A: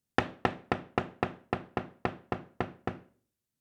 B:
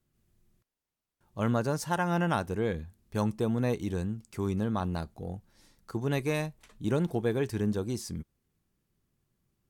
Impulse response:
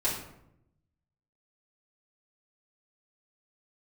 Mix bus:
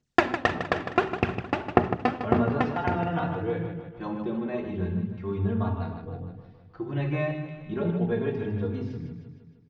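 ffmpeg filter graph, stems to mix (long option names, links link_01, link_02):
-filter_complex "[0:a]aphaser=in_gain=1:out_gain=1:delay=4:decay=0.73:speed=1.7:type=sinusoidal,volume=1.5dB,asplit=3[link_01][link_02][link_03];[link_02]volume=-14.5dB[link_04];[link_03]volume=-8.5dB[link_05];[1:a]lowpass=frequency=3200:width=0.5412,lowpass=frequency=3200:width=1.3066,equalizer=frequency=170:width_type=o:width=0.29:gain=6,asplit=2[link_06][link_07];[link_07]adelay=3.5,afreqshift=0.34[link_08];[link_06][link_08]amix=inputs=2:normalize=1,adelay=850,volume=-4dB,asplit=3[link_09][link_10][link_11];[link_10]volume=-5dB[link_12];[link_11]volume=-3.5dB[link_13];[2:a]atrim=start_sample=2205[link_14];[link_04][link_12]amix=inputs=2:normalize=0[link_15];[link_15][link_14]afir=irnorm=-1:irlink=0[link_16];[link_05][link_13]amix=inputs=2:normalize=0,aecho=0:1:155|310|465|620|775|930|1085|1240|1395:1|0.57|0.325|0.185|0.106|0.0602|0.0343|0.0195|0.0111[link_17];[link_01][link_09][link_16][link_17]amix=inputs=4:normalize=0,lowpass=frequency=7100:width=0.5412,lowpass=frequency=7100:width=1.3066"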